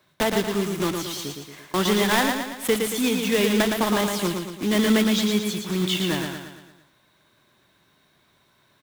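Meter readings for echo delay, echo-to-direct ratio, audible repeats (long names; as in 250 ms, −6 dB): 114 ms, −4.0 dB, 5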